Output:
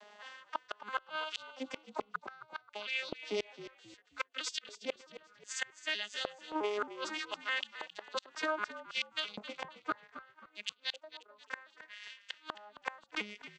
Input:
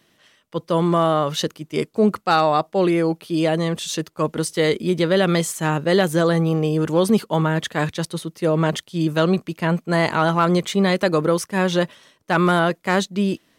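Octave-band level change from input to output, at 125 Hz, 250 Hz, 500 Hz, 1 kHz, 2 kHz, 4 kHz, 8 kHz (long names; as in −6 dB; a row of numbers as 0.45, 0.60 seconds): below −40 dB, −29.5 dB, −23.5 dB, −19.5 dB, −12.5 dB, −11.0 dB, −17.0 dB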